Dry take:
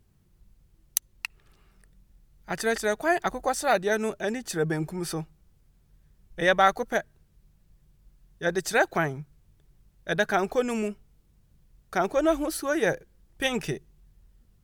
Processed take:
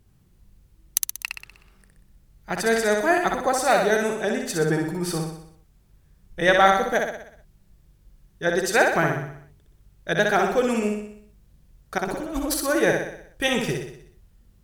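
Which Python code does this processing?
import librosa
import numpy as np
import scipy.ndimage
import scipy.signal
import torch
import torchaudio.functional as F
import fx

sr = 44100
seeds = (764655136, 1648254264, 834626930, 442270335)

y = fx.over_compress(x, sr, threshold_db=-34.0, ratio=-1.0, at=(11.98, 12.54))
y = fx.echo_feedback(y, sr, ms=62, feedback_pct=53, wet_db=-4.0)
y = F.gain(torch.from_numpy(y), 3.0).numpy()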